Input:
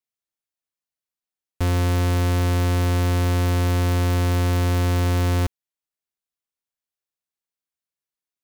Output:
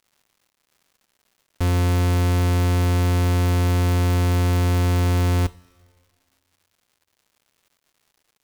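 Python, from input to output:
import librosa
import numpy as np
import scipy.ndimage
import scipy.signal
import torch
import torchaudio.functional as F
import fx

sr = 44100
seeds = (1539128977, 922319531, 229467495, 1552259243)

y = fx.rev_double_slope(x, sr, seeds[0], early_s=0.25, late_s=1.9, knee_db=-18, drr_db=14.5)
y = fx.dmg_crackle(y, sr, seeds[1], per_s=260.0, level_db=-50.0)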